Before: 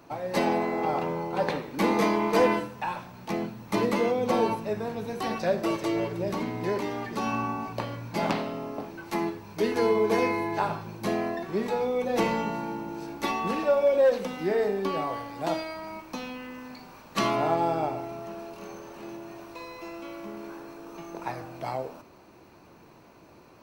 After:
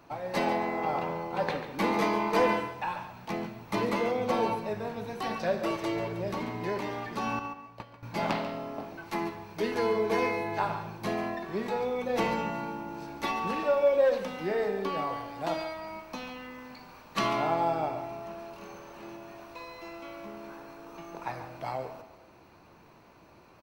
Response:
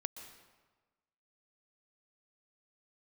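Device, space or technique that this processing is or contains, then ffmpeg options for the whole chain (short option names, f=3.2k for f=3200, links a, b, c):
filtered reverb send: -filter_complex "[0:a]asettb=1/sr,asplit=3[a][b][c];[a]atrim=end=7.394[d];[b]atrim=start=7.39:end=8.03,asetpts=PTS-STARTPTS,afade=t=in:d=0.004:c=qsin,afade=t=out:st=0.636:d=0.004:c=qsin,agate=range=-15dB:threshold=-28dB:ratio=16:detection=peak[e];[c]atrim=start=8.026[f];[d][e]acrossfade=d=0.004:c1=hsin:c2=qsin[g];[g][f]acrossfade=d=0.004:c1=qsin:c2=hsin,asplit=2[h][i];[i]highpass=510,lowpass=5.5k[j];[1:a]atrim=start_sample=2205[k];[j][k]afir=irnorm=-1:irlink=0,volume=-3.5dB[l];[h][l]amix=inputs=2:normalize=0,lowshelf=f=120:g=5.5,aecho=1:1:141:0.237,volume=-5dB"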